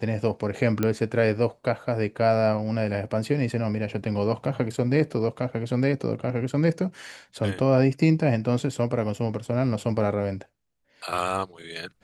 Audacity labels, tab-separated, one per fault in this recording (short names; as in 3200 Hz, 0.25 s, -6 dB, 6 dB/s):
0.830000	0.830000	pop -11 dBFS